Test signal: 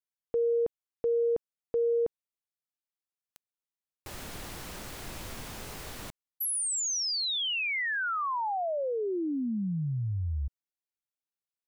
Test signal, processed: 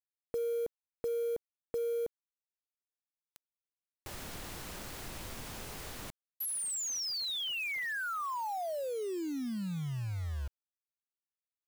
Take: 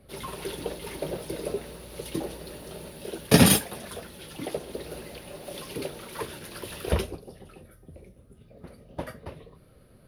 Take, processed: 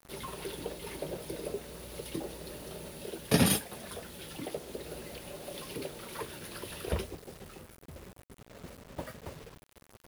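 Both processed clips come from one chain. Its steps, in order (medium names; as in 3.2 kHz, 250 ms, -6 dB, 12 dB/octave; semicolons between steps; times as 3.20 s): in parallel at +2.5 dB: compression 10:1, threshold -40 dBFS; on the sum: bit crusher 7-bit; trim -8.5 dB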